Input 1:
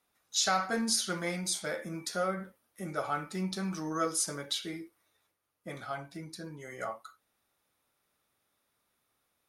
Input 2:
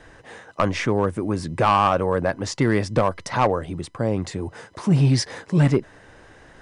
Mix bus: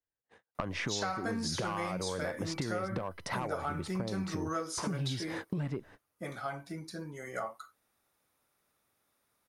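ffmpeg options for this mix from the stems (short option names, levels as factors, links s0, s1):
-filter_complex "[0:a]acrossover=split=6200[s0][s1];[s1]acompressor=threshold=0.00316:ratio=4:attack=1:release=60[s2];[s0][s2]amix=inputs=2:normalize=0,equalizer=f=3300:w=1.5:g=-3.5,adelay=550,volume=1.19[s3];[1:a]agate=range=0.00316:threshold=0.0141:ratio=16:detection=peak,equalizer=f=7300:w=1.5:g=-7.5,acompressor=threshold=0.0398:ratio=6,volume=0.794[s4];[s3][s4]amix=inputs=2:normalize=0,acompressor=threshold=0.0282:ratio=5"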